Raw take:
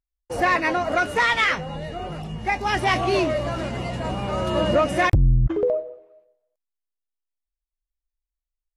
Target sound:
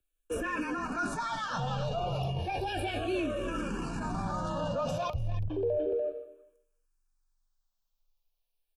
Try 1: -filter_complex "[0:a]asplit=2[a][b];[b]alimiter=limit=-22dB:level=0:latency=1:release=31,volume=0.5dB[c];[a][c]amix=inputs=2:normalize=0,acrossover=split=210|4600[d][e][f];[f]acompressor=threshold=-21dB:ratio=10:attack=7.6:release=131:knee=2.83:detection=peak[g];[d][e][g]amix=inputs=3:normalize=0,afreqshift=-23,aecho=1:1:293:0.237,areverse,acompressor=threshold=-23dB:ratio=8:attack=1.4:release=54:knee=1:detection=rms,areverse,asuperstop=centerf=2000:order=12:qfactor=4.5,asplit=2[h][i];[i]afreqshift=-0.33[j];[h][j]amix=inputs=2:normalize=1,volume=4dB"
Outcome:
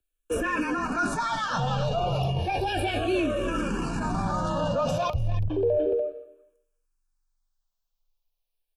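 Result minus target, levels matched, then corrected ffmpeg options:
compressor: peak gain reduction -6 dB
-filter_complex "[0:a]asplit=2[a][b];[b]alimiter=limit=-22dB:level=0:latency=1:release=31,volume=0.5dB[c];[a][c]amix=inputs=2:normalize=0,acrossover=split=210|4600[d][e][f];[f]acompressor=threshold=-21dB:ratio=10:attack=7.6:release=131:knee=2.83:detection=peak[g];[d][e][g]amix=inputs=3:normalize=0,afreqshift=-23,aecho=1:1:293:0.237,areverse,acompressor=threshold=-30dB:ratio=8:attack=1.4:release=54:knee=1:detection=rms,areverse,asuperstop=centerf=2000:order=12:qfactor=4.5,asplit=2[h][i];[i]afreqshift=-0.33[j];[h][j]amix=inputs=2:normalize=1,volume=4dB"

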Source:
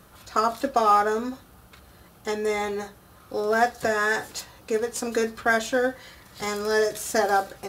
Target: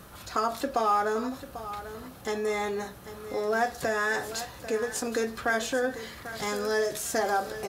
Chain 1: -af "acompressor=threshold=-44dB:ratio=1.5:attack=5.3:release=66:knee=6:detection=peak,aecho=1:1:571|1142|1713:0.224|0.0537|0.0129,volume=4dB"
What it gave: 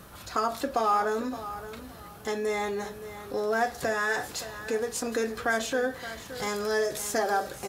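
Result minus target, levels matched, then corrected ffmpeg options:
echo 0.222 s early
-af "acompressor=threshold=-44dB:ratio=1.5:attack=5.3:release=66:knee=6:detection=peak,aecho=1:1:793|1586|2379:0.224|0.0537|0.0129,volume=4dB"

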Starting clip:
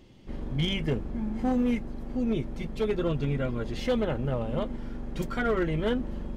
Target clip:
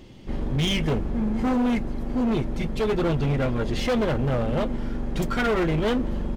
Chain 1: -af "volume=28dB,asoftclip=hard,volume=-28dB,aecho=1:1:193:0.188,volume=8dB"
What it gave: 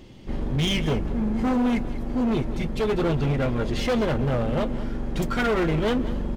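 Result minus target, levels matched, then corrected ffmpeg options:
echo-to-direct +11.5 dB
-af "volume=28dB,asoftclip=hard,volume=-28dB,aecho=1:1:193:0.0501,volume=8dB"

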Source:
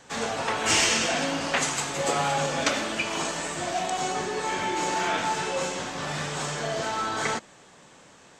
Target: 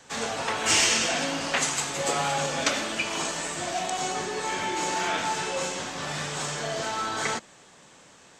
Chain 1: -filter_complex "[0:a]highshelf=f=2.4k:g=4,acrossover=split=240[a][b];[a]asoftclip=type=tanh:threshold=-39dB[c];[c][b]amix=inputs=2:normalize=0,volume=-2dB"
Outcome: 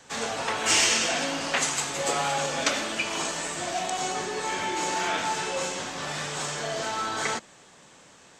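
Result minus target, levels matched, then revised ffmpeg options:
soft clip: distortion +16 dB
-filter_complex "[0:a]highshelf=f=2.4k:g=4,acrossover=split=240[a][b];[a]asoftclip=type=tanh:threshold=-27.5dB[c];[c][b]amix=inputs=2:normalize=0,volume=-2dB"

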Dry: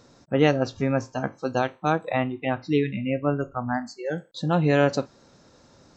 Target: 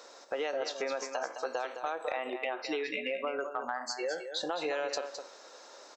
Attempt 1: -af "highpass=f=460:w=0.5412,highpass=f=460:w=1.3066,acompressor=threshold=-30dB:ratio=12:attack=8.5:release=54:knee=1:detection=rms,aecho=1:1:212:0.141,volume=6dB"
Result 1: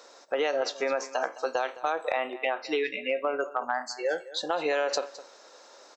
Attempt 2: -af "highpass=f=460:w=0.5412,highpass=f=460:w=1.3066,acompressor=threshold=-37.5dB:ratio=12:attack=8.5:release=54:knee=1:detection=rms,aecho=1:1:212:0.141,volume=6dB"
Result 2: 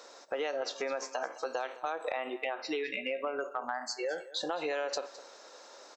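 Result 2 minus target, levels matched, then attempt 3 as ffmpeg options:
echo-to-direct -8.5 dB
-af "highpass=f=460:w=0.5412,highpass=f=460:w=1.3066,acompressor=threshold=-37.5dB:ratio=12:attack=8.5:release=54:knee=1:detection=rms,aecho=1:1:212:0.376,volume=6dB"

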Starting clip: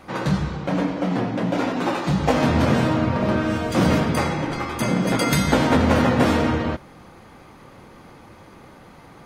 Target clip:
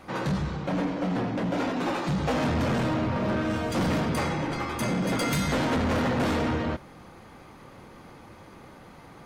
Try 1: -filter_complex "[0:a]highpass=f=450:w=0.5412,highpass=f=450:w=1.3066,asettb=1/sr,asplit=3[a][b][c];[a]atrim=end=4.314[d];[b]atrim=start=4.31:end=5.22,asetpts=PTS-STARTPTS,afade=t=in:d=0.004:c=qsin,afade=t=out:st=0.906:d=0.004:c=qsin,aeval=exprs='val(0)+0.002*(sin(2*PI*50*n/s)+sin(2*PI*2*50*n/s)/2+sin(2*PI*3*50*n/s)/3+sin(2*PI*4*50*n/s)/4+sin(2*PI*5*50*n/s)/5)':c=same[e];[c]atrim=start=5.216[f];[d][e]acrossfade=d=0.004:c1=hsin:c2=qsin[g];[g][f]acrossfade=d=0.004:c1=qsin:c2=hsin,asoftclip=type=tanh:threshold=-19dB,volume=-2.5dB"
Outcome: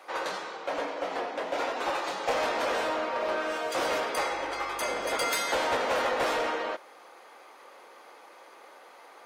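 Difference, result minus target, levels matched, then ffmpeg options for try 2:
500 Hz band +3.0 dB
-filter_complex "[0:a]asettb=1/sr,asplit=3[a][b][c];[a]atrim=end=4.314[d];[b]atrim=start=4.31:end=5.22,asetpts=PTS-STARTPTS,afade=t=in:d=0.004:c=qsin,afade=t=out:st=0.906:d=0.004:c=qsin,aeval=exprs='val(0)+0.002*(sin(2*PI*50*n/s)+sin(2*PI*2*50*n/s)/2+sin(2*PI*3*50*n/s)/3+sin(2*PI*4*50*n/s)/4+sin(2*PI*5*50*n/s)/5)':c=same[e];[c]atrim=start=5.216[f];[d][e]acrossfade=d=0.004:c1=hsin:c2=qsin[g];[g][f]acrossfade=d=0.004:c1=qsin:c2=hsin,asoftclip=type=tanh:threshold=-19dB,volume=-2.5dB"

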